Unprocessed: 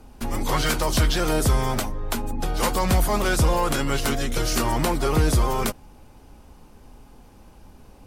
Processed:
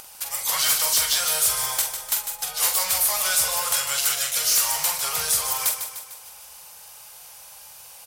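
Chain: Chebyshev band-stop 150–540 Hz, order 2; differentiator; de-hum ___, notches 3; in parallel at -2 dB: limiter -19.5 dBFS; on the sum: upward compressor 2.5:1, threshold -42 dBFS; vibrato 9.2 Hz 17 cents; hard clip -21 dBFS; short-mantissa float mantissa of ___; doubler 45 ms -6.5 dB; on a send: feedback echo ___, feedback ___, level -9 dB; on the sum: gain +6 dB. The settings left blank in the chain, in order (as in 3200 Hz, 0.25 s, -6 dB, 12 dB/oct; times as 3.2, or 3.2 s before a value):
112 Hz, 4-bit, 0.15 s, 55%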